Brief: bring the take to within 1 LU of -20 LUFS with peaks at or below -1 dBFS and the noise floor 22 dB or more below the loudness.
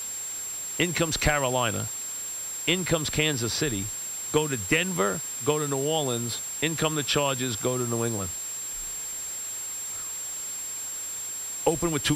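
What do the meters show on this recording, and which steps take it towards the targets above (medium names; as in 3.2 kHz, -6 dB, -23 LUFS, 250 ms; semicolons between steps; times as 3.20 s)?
steady tone 7.5 kHz; tone level -32 dBFS; noise floor -35 dBFS; noise floor target -49 dBFS; loudness -27.0 LUFS; peak level -8.5 dBFS; loudness target -20.0 LUFS
-> band-stop 7.5 kHz, Q 30; noise reduction 14 dB, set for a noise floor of -35 dBFS; trim +7 dB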